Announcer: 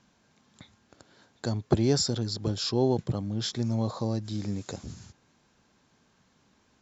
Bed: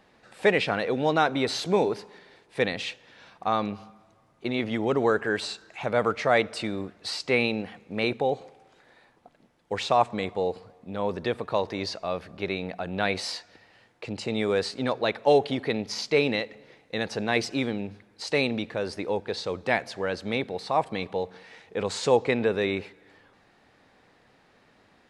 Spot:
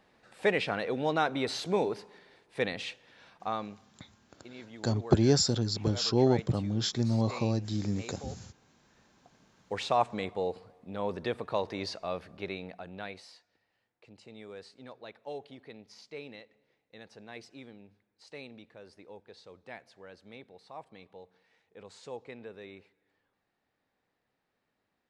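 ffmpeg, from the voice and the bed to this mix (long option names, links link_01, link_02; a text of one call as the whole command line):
ffmpeg -i stem1.wav -i stem2.wav -filter_complex "[0:a]adelay=3400,volume=0.5dB[link_01];[1:a]volume=9dB,afade=type=out:start_time=3.34:duration=0.54:silence=0.199526,afade=type=in:start_time=8.79:duration=0.82:silence=0.188365,afade=type=out:start_time=12.12:duration=1.15:silence=0.158489[link_02];[link_01][link_02]amix=inputs=2:normalize=0" out.wav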